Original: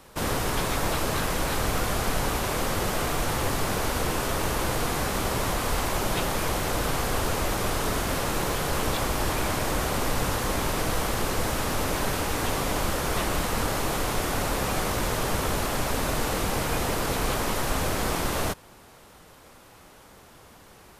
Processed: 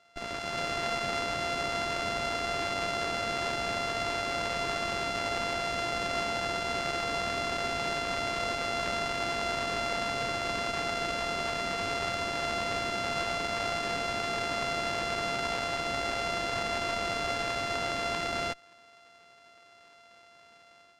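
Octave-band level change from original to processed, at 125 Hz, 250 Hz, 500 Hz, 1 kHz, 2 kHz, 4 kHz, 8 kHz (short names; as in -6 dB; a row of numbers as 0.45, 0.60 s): -13.0, -9.0, -3.5, -3.0, -1.5, -2.0, -10.5 dB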